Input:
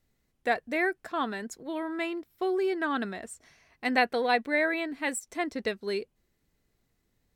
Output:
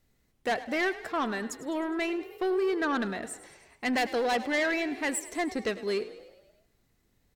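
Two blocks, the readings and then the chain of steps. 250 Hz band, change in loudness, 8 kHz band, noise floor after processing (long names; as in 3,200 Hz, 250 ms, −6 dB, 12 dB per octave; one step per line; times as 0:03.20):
+1.5 dB, 0.0 dB, +3.0 dB, −71 dBFS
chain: soft clipping −26.5 dBFS, distortion −10 dB
echo with shifted repeats 103 ms, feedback 58%, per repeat +38 Hz, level −16 dB
feedback echo with a swinging delay time 81 ms, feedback 59%, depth 146 cents, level −23 dB
level +3.5 dB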